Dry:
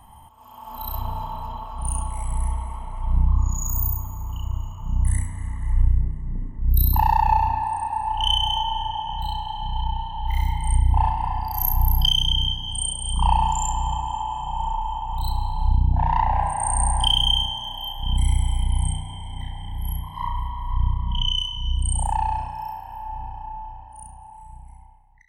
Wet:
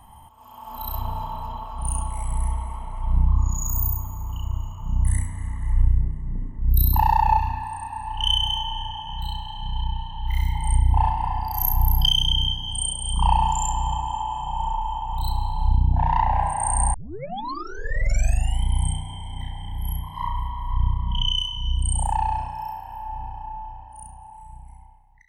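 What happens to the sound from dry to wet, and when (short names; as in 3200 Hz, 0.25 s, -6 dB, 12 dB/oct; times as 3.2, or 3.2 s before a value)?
7.39–10.55 band shelf 550 Hz -8 dB
16.94 tape start 1.69 s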